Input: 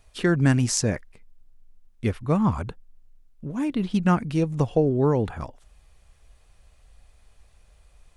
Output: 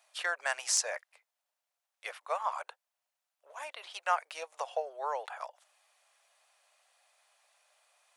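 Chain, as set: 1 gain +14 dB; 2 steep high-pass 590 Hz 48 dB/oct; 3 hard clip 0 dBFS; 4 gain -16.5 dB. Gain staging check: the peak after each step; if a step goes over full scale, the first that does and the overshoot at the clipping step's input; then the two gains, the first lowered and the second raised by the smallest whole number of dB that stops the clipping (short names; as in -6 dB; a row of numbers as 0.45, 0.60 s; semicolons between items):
+8.5, +7.5, 0.0, -16.5 dBFS; step 1, 7.5 dB; step 1 +6 dB, step 4 -8.5 dB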